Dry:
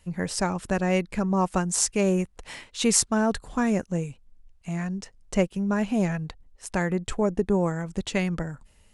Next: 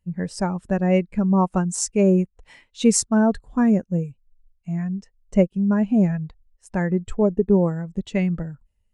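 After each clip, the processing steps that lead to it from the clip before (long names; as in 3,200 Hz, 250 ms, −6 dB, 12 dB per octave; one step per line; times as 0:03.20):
every bin expanded away from the loudest bin 1.5 to 1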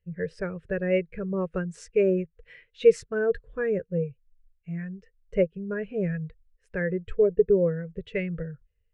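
drawn EQ curve 160 Hz 0 dB, 240 Hz −20 dB, 470 Hz +11 dB, 820 Hz −21 dB, 1,600 Hz +5 dB, 2,600 Hz +2 dB, 7,400 Hz −21 dB
level −4 dB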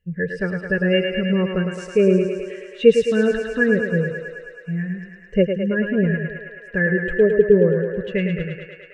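hollow resonant body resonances 240/1,700/2,800 Hz, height 16 dB, ringing for 50 ms
on a send: feedback echo with a high-pass in the loop 107 ms, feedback 80%, high-pass 310 Hz, level −5 dB
on the sum: level +2.5 dB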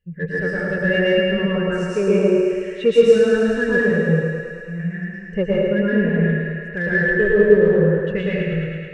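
in parallel at −11 dB: soft clipping −19 dBFS, distortion −7 dB
on the sum: dense smooth reverb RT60 1.1 s, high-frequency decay 0.75×, pre-delay 105 ms, DRR −6.5 dB
level −6 dB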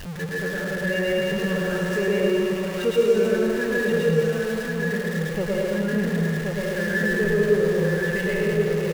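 converter with a step at zero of −22 dBFS
single-tap delay 1,077 ms −3.5 dB
level −8 dB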